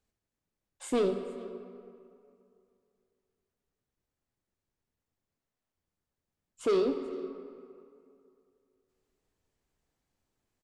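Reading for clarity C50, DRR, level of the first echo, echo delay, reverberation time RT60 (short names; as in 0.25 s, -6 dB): 7.5 dB, 6.5 dB, -22.0 dB, 0.433 s, 2.5 s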